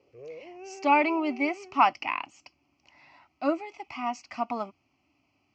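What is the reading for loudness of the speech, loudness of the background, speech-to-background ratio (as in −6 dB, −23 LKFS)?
−28.0 LKFS, −45.0 LKFS, 17.0 dB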